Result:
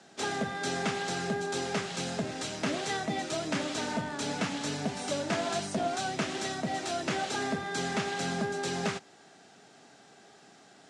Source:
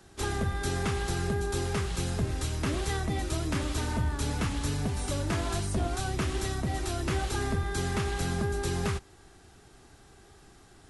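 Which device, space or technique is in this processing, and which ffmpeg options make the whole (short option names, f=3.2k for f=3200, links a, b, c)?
television speaker: -af "highpass=f=180:w=0.5412,highpass=f=180:w=1.3066,equalizer=f=350:t=q:w=4:g=-8,equalizer=f=650:t=q:w=4:g=5,equalizer=f=1.1k:t=q:w=4:g=-5,lowpass=f=7.7k:w=0.5412,lowpass=f=7.7k:w=1.3066,volume=2.5dB"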